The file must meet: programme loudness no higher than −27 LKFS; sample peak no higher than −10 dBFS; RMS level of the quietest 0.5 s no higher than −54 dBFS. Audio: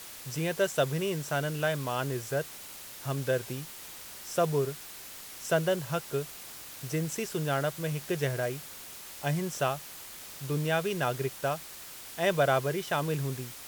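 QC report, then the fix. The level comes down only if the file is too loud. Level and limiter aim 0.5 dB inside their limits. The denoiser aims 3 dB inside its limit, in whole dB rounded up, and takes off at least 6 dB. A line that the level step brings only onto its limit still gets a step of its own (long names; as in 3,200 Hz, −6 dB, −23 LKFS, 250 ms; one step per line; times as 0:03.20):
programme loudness −31.5 LKFS: in spec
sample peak −12.5 dBFS: in spec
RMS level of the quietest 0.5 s −45 dBFS: out of spec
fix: broadband denoise 12 dB, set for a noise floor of −45 dBFS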